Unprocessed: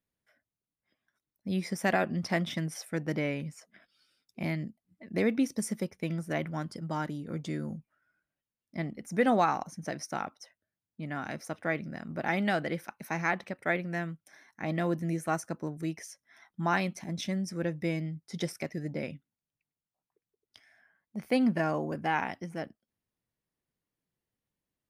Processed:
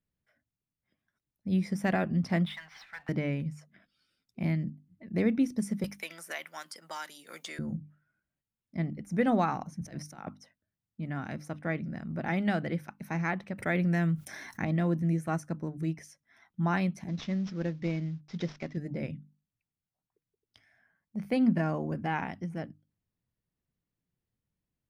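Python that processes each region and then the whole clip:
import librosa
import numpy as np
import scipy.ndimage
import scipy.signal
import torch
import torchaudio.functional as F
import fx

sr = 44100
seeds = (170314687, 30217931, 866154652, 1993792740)

y = fx.chain(x, sr, fx.ellip_bandpass(low_hz=850.0, high_hz=4200.0, order=3, stop_db=40),
    fx.power_curve(exponent=0.7), at=(2.46, 3.09))
y = fx.chain(y, sr, fx.highpass(hz=600.0, slope=12),
    fx.tilt_eq(slope=4.5),
    fx.band_squash(depth_pct=70), at=(5.84, 7.59))
y = fx.chain(y, sr, fx.high_shelf(hz=6600.0, db=5.5),
    fx.over_compress(threshold_db=-41.0, ratio=-1.0),
    fx.band_widen(depth_pct=70), at=(9.81, 10.35))
y = fx.chain(y, sr, fx.high_shelf(hz=4600.0, db=7.5),
    fx.env_flatten(amount_pct=50), at=(13.58, 14.65))
y = fx.chain(y, sr, fx.cvsd(bps=32000),
    fx.peak_eq(hz=90.0, db=-8.0, octaves=1.5), at=(17.08, 18.77))
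y = fx.bass_treble(y, sr, bass_db=11, treble_db=-4)
y = fx.hum_notches(y, sr, base_hz=50, count=6)
y = y * 10.0 ** (-3.5 / 20.0)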